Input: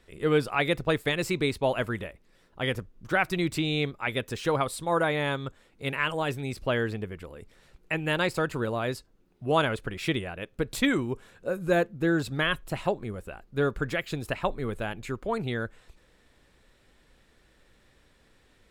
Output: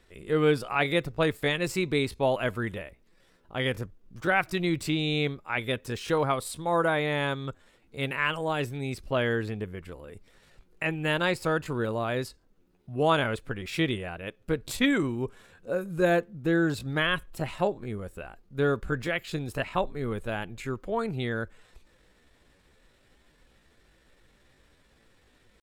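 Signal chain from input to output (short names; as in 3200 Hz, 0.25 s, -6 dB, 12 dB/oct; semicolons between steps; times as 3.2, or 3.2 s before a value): tempo 0.73×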